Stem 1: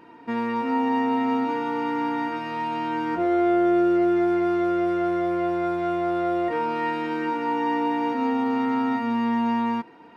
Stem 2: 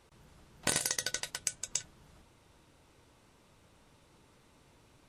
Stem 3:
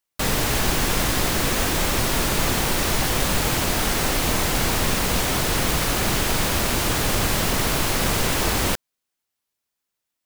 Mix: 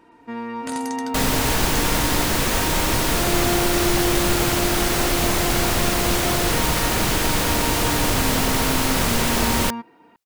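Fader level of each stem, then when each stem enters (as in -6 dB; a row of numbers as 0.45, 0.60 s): -4.0, -5.5, +1.0 dB; 0.00, 0.00, 0.95 s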